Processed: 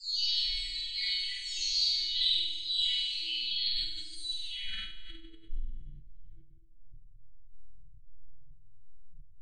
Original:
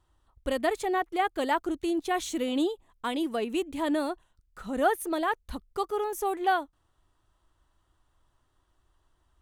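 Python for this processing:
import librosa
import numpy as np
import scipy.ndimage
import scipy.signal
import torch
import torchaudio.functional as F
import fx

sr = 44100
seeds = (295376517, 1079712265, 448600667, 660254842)

p1 = fx.spec_delay(x, sr, highs='early', ms=862)
p2 = scipy.signal.sosfilt(scipy.signal.cheby1(5, 1.0, 8600.0, 'lowpass', fs=sr, output='sos'), p1)
p3 = fx.high_shelf(p2, sr, hz=2300.0, db=11.0)
p4 = fx.small_body(p3, sr, hz=(430.0, 2000.0, 3800.0), ring_ms=30, db=15)
p5 = fx.over_compress(p4, sr, threshold_db=-27.0, ratio=-0.5)
p6 = p4 + (p5 * librosa.db_to_amplitude(3.0))
p7 = fx.curve_eq(p6, sr, hz=(140.0, 200.0, 2500.0), db=(0, -29, -1))
p8 = fx.filter_sweep_lowpass(p7, sr, from_hz=4500.0, to_hz=140.0, start_s=4.23, end_s=5.83, q=6.3)
p9 = scipy.signal.sosfilt(scipy.signal.cheby1(3, 1.0, [190.0, 2700.0], 'bandstop', fs=sr, output='sos'), p8)
p10 = fx.resonator_bank(p9, sr, root=57, chord='fifth', decay_s=0.32)
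p11 = p10 + fx.room_flutter(p10, sr, wall_m=8.4, rt60_s=1.4, dry=0)
p12 = fx.room_shoebox(p11, sr, seeds[0], volume_m3=510.0, walls='furnished', distance_m=7.0)
p13 = fx.sustainer(p12, sr, db_per_s=42.0)
y = p13 * librosa.db_to_amplitude(-5.0)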